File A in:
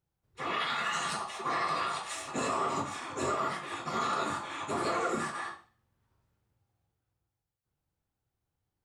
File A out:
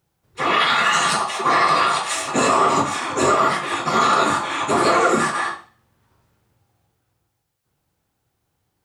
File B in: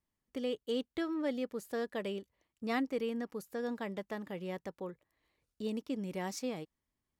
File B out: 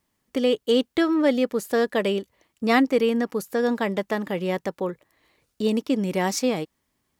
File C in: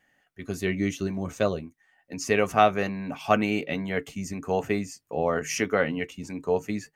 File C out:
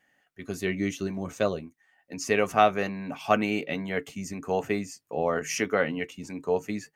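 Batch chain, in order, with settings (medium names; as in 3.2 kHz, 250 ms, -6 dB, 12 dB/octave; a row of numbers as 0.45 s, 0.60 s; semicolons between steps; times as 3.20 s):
bass shelf 76 Hz -11 dB; peak normalisation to -6 dBFS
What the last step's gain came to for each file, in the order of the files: +15.0 dB, +15.0 dB, -1.0 dB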